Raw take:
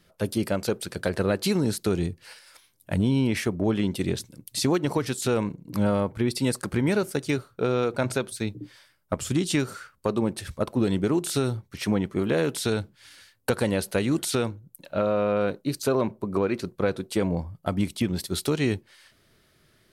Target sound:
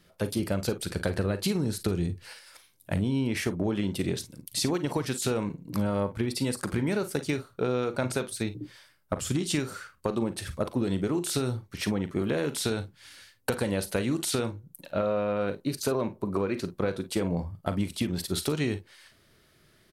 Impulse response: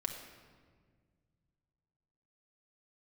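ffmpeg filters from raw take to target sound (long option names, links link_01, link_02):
-filter_complex "[0:a]asettb=1/sr,asplit=3[link_01][link_02][link_03];[link_01]atrim=end=0.394[link_04];[link_02]atrim=start=0.39:end=2.26,asetpts=PTS-STARTPTS,afade=type=in:duration=0.004:curve=qsin,afade=type=out:start_time=1.866:duration=0.004:curve=qsin,lowshelf=frequency=120:gain=9.5[link_05];[link_03]atrim=start=2.256[link_06];[link_04][link_05]acrossfade=duration=0.004:curve1=hsin:curve2=qsin[link_07];[link_07][link_06]acrossfade=duration=0.004:curve1=qsin:curve2=hsin,acompressor=threshold=-24dB:ratio=6,asplit=2[link_08][link_09];[link_09]aecho=0:1:40|52:0.211|0.168[link_10];[link_08][link_10]amix=inputs=2:normalize=0"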